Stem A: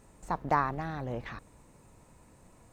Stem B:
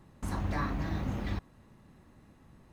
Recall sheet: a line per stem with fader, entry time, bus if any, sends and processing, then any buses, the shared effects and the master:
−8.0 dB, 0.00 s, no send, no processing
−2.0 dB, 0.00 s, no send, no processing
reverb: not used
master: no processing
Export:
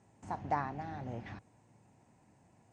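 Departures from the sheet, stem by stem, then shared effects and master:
stem B −2.0 dB → −12.5 dB
master: extra loudspeaker in its box 110–7,600 Hz, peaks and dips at 110 Hz +7 dB, 510 Hz −4 dB, 760 Hz +7 dB, 1,200 Hz −7 dB, 3,900 Hz −6 dB

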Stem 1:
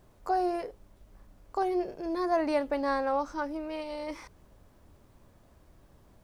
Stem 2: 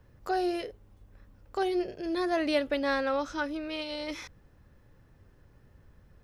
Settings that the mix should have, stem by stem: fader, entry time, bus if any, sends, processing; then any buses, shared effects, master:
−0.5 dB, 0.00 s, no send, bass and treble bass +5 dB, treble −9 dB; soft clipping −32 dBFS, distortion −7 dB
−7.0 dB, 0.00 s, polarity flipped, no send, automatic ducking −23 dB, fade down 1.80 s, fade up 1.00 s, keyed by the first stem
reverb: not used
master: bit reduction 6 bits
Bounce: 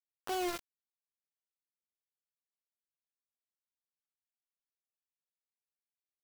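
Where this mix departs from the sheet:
stem 1 −0.5 dB → −9.0 dB
stem 2: polarity flipped

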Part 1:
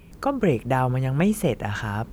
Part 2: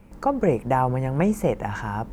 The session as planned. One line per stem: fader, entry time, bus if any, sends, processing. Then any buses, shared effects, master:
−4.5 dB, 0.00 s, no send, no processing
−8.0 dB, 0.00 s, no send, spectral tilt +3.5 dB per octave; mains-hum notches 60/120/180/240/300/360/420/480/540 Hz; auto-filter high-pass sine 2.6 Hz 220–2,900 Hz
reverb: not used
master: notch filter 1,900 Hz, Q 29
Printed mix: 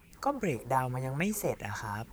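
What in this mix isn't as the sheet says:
stem 1 −4.5 dB → −11.5 dB
master: missing notch filter 1,900 Hz, Q 29

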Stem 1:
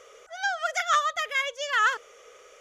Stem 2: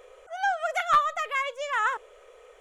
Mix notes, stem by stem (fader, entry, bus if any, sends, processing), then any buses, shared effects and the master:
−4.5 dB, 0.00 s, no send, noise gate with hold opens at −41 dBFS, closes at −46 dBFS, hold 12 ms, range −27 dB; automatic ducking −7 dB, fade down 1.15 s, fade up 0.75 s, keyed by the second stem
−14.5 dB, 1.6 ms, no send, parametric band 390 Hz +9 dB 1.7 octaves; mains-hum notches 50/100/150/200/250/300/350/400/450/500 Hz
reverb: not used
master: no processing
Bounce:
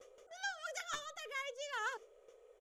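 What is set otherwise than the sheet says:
stem 2: polarity flipped
master: extra parametric band 1,600 Hz −7 dB 2.5 octaves

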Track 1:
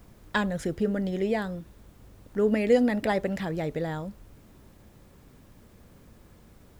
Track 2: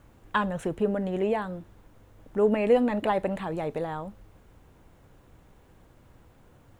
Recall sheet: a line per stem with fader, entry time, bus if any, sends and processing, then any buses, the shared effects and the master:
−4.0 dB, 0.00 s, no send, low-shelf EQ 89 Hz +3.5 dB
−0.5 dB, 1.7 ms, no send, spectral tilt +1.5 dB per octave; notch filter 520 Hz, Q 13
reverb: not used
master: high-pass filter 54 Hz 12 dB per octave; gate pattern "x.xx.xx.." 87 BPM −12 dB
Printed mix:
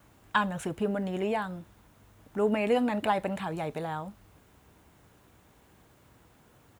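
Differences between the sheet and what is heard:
stem 1 −4.0 dB → −13.5 dB
master: missing gate pattern "x.xx.xx.." 87 BPM −12 dB

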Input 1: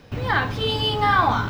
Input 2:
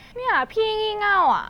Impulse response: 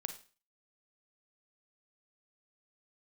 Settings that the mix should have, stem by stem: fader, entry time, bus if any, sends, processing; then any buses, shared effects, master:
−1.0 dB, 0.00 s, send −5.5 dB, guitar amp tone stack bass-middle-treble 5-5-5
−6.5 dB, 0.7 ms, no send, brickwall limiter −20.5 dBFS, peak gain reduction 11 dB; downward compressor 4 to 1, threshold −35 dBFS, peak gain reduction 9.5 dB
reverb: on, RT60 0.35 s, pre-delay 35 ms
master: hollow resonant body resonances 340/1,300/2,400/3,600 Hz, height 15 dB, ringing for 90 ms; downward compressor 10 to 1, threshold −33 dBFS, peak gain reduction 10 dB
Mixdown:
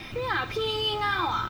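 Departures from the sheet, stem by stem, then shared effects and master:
stem 2 −6.5 dB → +3.5 dB
master: missing downward compressor 10 to 1, threshold −33 dBFS, peak gain reduction 10 dB

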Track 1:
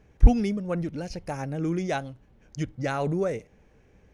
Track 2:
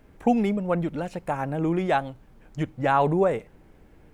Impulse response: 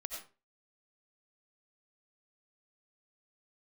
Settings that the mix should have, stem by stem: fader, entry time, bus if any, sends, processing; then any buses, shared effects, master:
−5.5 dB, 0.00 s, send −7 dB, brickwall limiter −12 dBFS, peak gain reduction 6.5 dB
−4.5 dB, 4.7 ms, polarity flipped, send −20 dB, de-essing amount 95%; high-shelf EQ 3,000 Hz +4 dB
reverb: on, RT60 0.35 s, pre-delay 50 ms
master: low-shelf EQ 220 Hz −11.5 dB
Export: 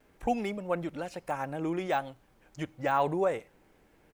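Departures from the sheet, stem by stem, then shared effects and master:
stem 1 −5.5 dB → −15.5 dB
reverb return −9.5 dB

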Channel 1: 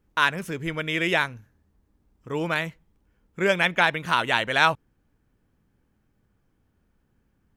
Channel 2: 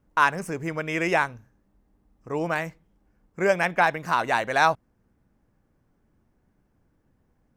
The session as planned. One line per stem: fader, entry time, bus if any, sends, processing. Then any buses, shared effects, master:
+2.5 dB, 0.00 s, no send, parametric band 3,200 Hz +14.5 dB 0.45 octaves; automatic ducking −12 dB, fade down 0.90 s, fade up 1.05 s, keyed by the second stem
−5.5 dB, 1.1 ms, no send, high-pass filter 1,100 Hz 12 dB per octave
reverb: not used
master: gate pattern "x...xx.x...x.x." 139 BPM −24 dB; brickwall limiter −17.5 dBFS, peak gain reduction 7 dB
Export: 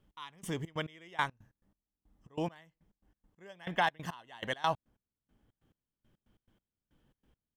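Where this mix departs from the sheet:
stem 1 +2.5 dB → −5.5 dB
stem 2: missing high-pass filter 1,100 Hz 12 dB per octave

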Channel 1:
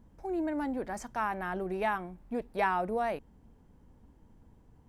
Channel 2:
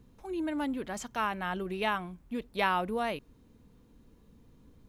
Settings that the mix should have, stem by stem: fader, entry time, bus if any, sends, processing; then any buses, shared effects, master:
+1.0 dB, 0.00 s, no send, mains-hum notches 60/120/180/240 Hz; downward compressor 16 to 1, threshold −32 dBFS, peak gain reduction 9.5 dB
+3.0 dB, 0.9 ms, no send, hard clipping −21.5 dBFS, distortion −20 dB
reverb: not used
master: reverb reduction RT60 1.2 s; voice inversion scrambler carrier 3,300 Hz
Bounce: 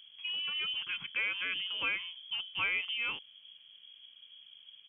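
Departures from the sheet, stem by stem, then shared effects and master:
stem 2 +3.0 dB → −7.0 dB
master: missing reverb reduction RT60 1.2 s

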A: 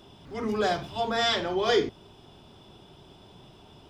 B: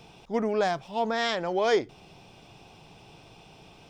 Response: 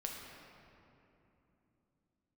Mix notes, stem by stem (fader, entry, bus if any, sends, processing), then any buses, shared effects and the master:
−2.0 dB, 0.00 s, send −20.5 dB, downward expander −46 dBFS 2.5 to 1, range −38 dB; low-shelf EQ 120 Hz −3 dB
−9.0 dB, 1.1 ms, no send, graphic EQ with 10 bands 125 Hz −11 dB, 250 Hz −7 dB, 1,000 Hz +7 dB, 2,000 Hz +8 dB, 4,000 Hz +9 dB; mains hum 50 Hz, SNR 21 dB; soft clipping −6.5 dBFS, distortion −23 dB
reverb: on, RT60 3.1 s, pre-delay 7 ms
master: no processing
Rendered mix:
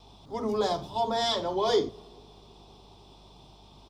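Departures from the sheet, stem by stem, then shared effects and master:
stem B: polarity flipped
master: extra flat-topped bell 2,000 Hz −13.5 dB 1.2 octaves

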